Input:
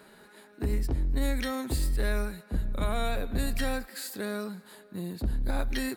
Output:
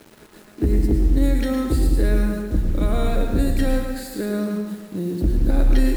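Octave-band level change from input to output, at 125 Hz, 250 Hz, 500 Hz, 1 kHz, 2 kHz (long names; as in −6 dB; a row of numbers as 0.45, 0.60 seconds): +10.5, +12.5, +9.0, +3.5, +2.0 decibels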